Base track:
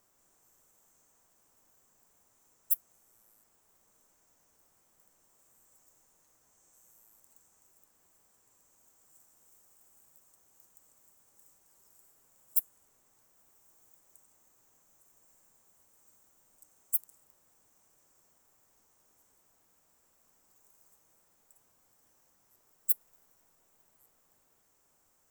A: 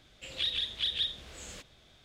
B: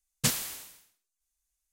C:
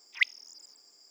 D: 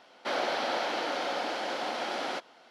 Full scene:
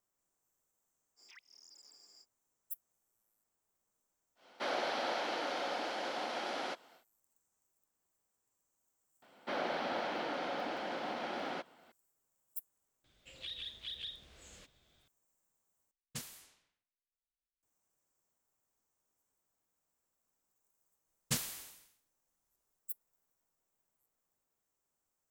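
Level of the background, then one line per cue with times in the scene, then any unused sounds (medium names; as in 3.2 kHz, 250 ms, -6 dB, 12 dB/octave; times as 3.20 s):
base track -15.5 dB
1.16 s: add C -3 dB, fades 0.05 s + compression 16:1, threshold -52 dBFS
4.35 s: add D -5.5 dB, fades 0.10 s
9.22 s: add D -6.5 dB + tone controls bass +10 dB, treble -8 dB
13.04 s: add A -11 dB + peak limiter -23.5 dBFS
15.91 s: replace with B -17.5 dB + level-controlled noise filter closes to 2.4 kHz, open at -29 dBFS
21.07 s: add B -8 dB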